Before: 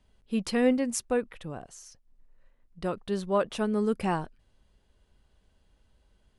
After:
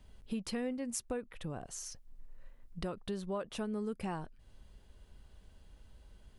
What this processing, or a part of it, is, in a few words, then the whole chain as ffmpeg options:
ASMR close-microphone chain: -af "lowshelf=f=140:g=5,acompressor=threshold=-42dB:ratio=4,highshelf=f=9.6k:g=4,volume=4dB"

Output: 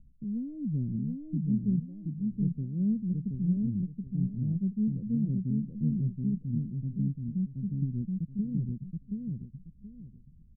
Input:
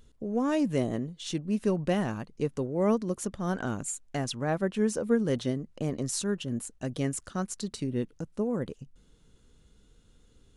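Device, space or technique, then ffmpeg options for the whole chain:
the neighbour's flat through the wall: -filter_complex "[0:a]asettb=1/sr,asplit=3[a][b][c];[a]atrim=end=1.794[d];[b]atrim=start=1.79:end=2.31,asetpts=PTS-STARTPTS,afade=t=in:d=0.004:c=qsin,afade=t=out:st=0.516:d=0.004:c=qsin,highpass=f=1.4k:p=1[e];[c]atrim=start=2.306[f];[d][e]acrossfade=d=0.004:c1=hsin:c2=qsin[g];[g][f]acrossfade=d=0.004:c1=qsin:c2=hsin,lowpass=f=200:w=0.5412,lowpass=f=200:w=1.3066,equalizer=f=180:t=o:w=0.77:g=4,aecho=1:1:726|1452|2178|2904:0.708|0.177|0.0442|0.0111,volume=1.5dB"

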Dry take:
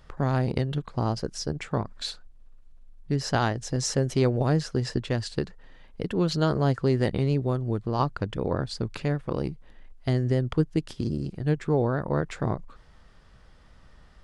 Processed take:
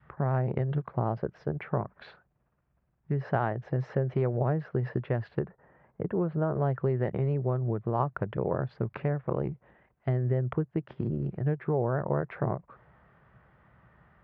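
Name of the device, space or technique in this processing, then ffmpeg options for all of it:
bass amplifier: -filter_complex "[0:a]acompressor=threshold=-26dB:ratio=4,highpass=f=73:w=0.5412,highpass=f=73:w=1.3066,equalizer=f=87:t=q:w=4:g=-7,equalizer=f=130:t=q:w=4:g=4,equalizer=f=270:t=q:w=4:g=-8,equalizer=f=490:t=q:w=4:g=-5,lowpass=f=2.1k:w=0.5412,lowpass=f=2.1k:w=1.3066,asettb=1/sr,asplit=3[a][b][c];[a]atrim=end=5.394[d];[b]atrim=start=5.39:end=6.55,asetpts=PTS-STARTPTS,afade=t=in:d=0.004:c=qsin,afade=t=out:st=1.156:d=0.004:c=qsin,lowpass=1.5k[e];[c]atrim=start=6.546[f];[d][e]acrossfade=d=0.004:c1=hsin:c2=qsin[g];[g][f]acrossfade=d=0.004:c1=qsin:c2=hsin,adynamicequalizer=threshold=0.00398:dfrequency=540:dqfactor=1.1:tfrequency=540:tqfactor=1.1:attack=5:release=100:ratio=0.375:range=3.5:mode=boostabove:tftype=bell"

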